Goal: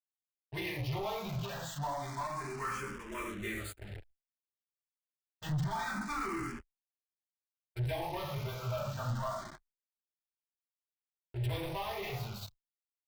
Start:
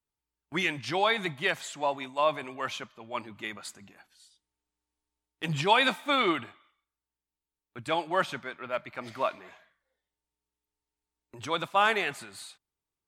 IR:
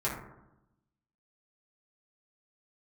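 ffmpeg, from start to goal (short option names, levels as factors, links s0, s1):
-filter_complex "[0:a]flanger=delay=17:depth=3.4:speed=1.4,asplit=2[s0][s1];[s1]adelay=67,lowpass=f=4100:p=1,volume=0.15,asplit=2[s2][s3];[s3]adelay=67,lowpass=f=4100:p=1,volume=0.23[s4];[s0][s2][s4]amix=inputs=3:normalize=0[s5];[1:a]atrim=start_sample=2205,atrim=end_sample=6174[s6];[s5][s6]afir=irnorm=-1:irlink=0,acompressor=threshold=0.0447:ratio=6,lowshelf=f=160:g=10.5,acrusher=bits=6:mix=0:aa=0.000001,asoftclip=type=tanh:threshold=0.0316,anlmdn=0.1,asubboost=boost=4:cutoff=100,asplit=2[s7][s8];[s8]afreqshift=0.27[s9];[s7][s9]amix=inputs=2:normalize=1"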